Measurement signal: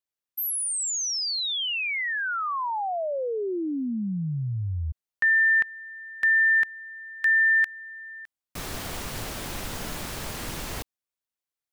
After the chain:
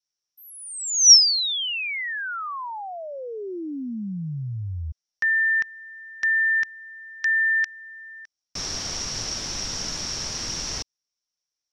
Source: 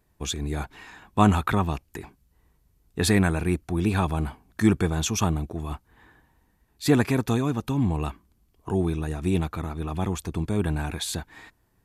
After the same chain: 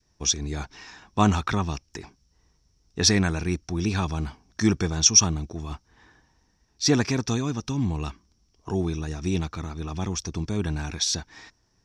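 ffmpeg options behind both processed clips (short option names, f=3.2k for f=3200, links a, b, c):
-af "lowpass=f=5.6k:t=q:w=13,adynamicequalizer=threshold=0.0112:dfrequency=650:dqfactor=0.96:tfrequency=650:tqfactor=0.96:attack=5:release=100:ratio=0.375:range=2.5:mode=cutabove:tftype=bell,volume=-1.5dB"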